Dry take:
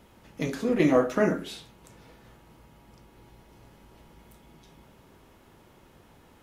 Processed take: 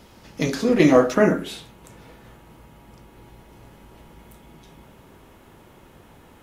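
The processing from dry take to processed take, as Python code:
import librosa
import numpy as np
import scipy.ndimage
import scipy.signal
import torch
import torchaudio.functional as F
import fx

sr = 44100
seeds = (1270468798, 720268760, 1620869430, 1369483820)

y = fx.peak_eq(x, sr, hz=5000.0, db=fx.steps((0.0, 7.0), (1.14, -3.5)), octaves=0.77)
y = y * 10.0 ** (6.5 / 20.0)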